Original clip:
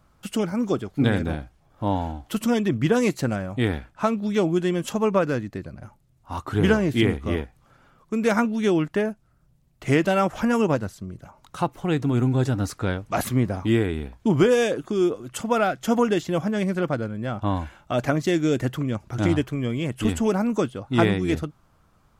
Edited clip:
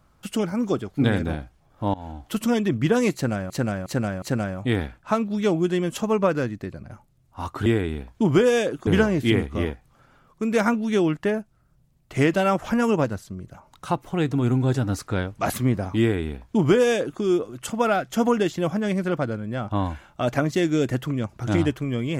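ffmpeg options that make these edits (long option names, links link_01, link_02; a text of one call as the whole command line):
ffmpeg -i in.wav -filter_complex "[0:a]asplit=7[link_01][link_02][link_03][link_04][link_05][link_06][link_07];[link_01]atrim=end=1.94,asetpts=PTS-STARTPTS,afade=type=out:start_time=1.936:duration=0.004:curve=hsin:silence=0.0794328[link_08];[link_02]atrim=start=1.94:end=3.502,asetpts=PTS-STARTPTS,afade=type=in:duration=0.3:silence=0.0794328[link_09];[link_03]atrim=start=3.138:end=3.502[link_10];[link_04]atrim=start=3.138:end=3.502[link_11];[link_05]atrim=start=3.138:end=6.582[link_12];[link_06]atrim=start=13.708:end=14.922[link_13];[link_07]atrim=start=6.578[link_14];[link_08][link_09]concat=n=2:v=0:a=1[link_15];[link_15][link_10]acrossfade=duration=0.004:curve1=hsin:curve2=hsin[link_16];[link_16][link_11]acrossfade=duration=0.004:curve1=hsin:curve2=hsin[link_17];[link_17][link_12]acrossfade=duration=0.004:curve1=hsin:curve2=hsin[link_18];[link_18][link_13]acrossfade=duration=0.004:curve1=hsin:curve2=hsin[link_19];[link_19][link_14]acrossfade=duration=0.004:curve1=hsin:curve2=hsin" out.wav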